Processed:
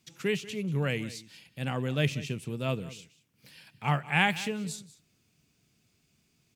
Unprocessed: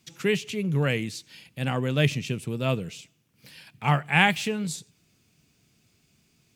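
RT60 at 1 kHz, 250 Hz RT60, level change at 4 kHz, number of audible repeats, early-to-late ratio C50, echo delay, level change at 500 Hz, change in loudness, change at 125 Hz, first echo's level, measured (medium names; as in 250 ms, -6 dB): no reverb, no reverb, -5.0 dB, 1, no reverb, 188 ms, -5.0 dB, -5.0 dB, -5.0 dB, -17.5 dB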